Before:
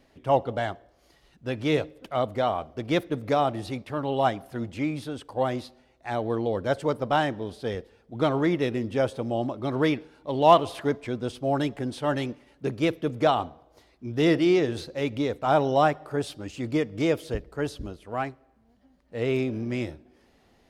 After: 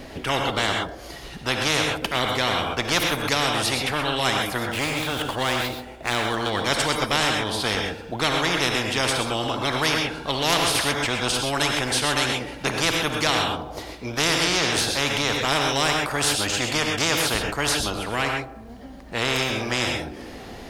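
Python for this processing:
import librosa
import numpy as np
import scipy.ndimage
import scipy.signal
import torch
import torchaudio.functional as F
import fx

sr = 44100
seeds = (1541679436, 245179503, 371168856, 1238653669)

y = fx.median_filter(x, sr, points=9, at=(4.58, 6.5))
y = fx.rev_gated(y, sr, seeds[0], gate_ms=150, shape='rising', drr_db=4.5)
y = fx.spectral_comp(y, sr, ratio=4.0)
y = y * librosa.db_to_amplitude(-2.0)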